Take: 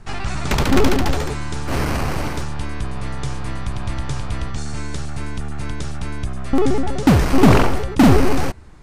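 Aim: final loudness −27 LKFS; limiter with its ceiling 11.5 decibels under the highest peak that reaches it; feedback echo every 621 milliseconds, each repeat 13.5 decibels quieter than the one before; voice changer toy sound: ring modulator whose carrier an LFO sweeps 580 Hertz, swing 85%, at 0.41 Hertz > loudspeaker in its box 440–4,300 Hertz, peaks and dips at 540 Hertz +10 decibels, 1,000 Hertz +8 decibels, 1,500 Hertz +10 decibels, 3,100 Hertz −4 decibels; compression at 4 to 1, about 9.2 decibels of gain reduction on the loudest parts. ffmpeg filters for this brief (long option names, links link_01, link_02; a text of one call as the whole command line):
ffmpeg -i in.wav -af "acompressor=threshold=-18dB:ratio=4,alimiter=limit=-20.5dB:level=0:latency=1,aecho=1:1:621|1242:0.211|0.0444,aeval=exprs='val(0)*sin(2*PI*580*n/s+580*0.85/0.41*sin(2*PI*0.41*n/s))':channel_layout=same,highpass=440,equalizer=frequency=540:width_type=q:width=4:gain=10,equalizer=frequency=1000:width_type=q:width=4:gain=8,equalizer=frequency=1500:width_type=q:width=4:gain=10,equalizer=frequency=3100:width_type=q:width=4:gain=-4,lowpass=frequency=4300:width=0.5412,lowpass=frequency=4300:width=1.3066,volume=-2.5dB" out.wav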